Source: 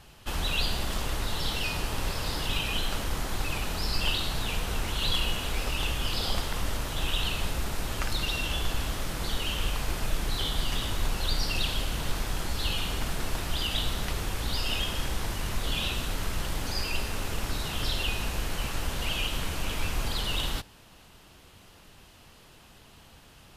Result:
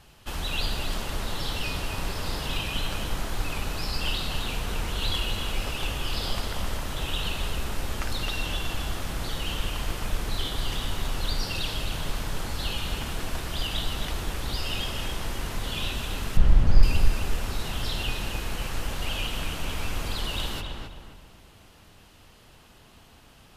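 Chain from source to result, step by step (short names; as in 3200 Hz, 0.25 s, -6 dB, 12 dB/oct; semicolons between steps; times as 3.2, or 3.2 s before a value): 16.37–16.83 RIAA curve playback; darkening echo 0.264 s, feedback 39%, low-pass 2400 Hz, level -3 dB; gain -1.5 dB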